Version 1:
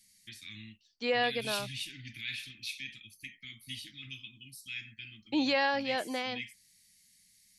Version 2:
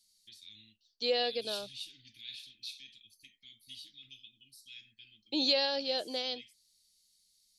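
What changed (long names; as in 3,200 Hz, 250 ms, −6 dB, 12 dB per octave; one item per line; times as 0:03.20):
first voice −9.0 dB
master: add octave-band graphic EQ 125/250/500/1,000/2,000/4,000 Hz −9/−5/+4/−10/−12/+11 dB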